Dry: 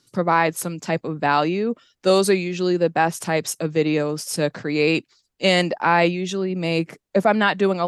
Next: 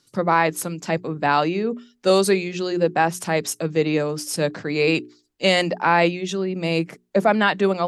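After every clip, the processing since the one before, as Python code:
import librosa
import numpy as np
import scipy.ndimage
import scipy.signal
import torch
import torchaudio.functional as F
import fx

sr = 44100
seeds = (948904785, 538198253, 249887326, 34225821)

y = fx.hum_notches(x, sr, base_hz=60, count=7)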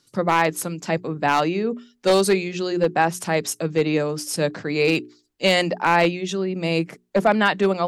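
y = np.minimum(x, 2.0 * 10.0 ** (-10.0 / 20.0) - x)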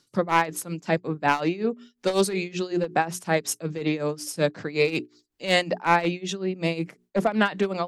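y = x * (1.0 - 0.83 / 2.0 + 0.83 / 2.0 * np.cos(2.0 * np.pi * 5.4 * (np.arange(len(x)) / sr)))
y = fx.doppler_dist(y, sr, depth_ms=0.12)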